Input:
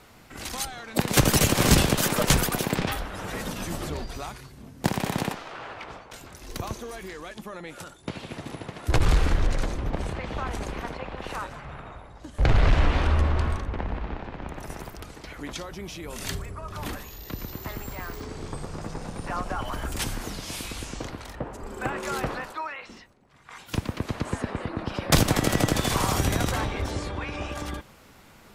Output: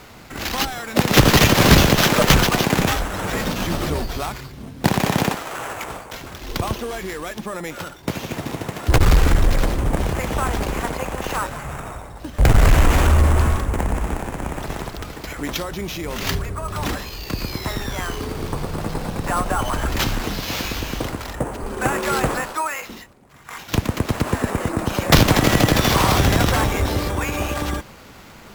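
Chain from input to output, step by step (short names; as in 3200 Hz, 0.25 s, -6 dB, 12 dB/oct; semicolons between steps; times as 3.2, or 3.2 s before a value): sample-rate reducer 9200 Hz, jitter 0%; added harmonics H 5 -22 dB, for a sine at -10 dBFS; gain +6.5 dB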